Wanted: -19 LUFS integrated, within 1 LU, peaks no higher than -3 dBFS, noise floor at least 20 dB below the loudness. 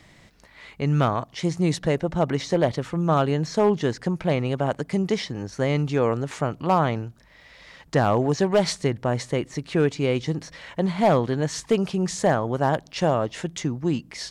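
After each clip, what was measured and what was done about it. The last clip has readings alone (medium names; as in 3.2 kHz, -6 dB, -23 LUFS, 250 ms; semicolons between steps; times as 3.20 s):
clipped samples 0.3%; clipping level -11.5 dBFS; loudness -24.0 LUFS; peak level -11.5 dBFS; loudness target -19.0 LUFS
-> clip repair -11.5 dBFS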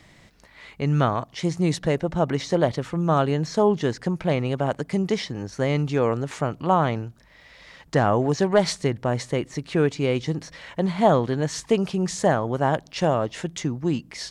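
clipped samples 0.0%; loudness -24.0 LUFS; peak level -6.0 dBFS; loudness target -19.0 LUFS
-> trim +5 dB; peak limiter -3 dBFS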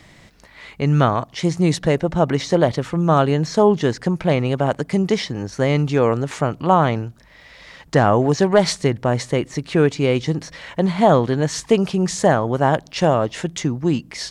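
loudness -19.0 LUFS; peak level -3.0 dBFS; noise floor -48 dBFS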